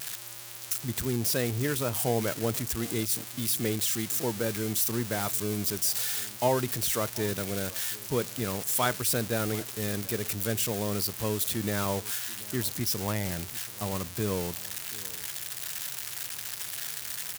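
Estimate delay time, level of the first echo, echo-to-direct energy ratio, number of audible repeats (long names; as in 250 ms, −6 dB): 732 ms, −21.0 dB, −21.0 dB, 1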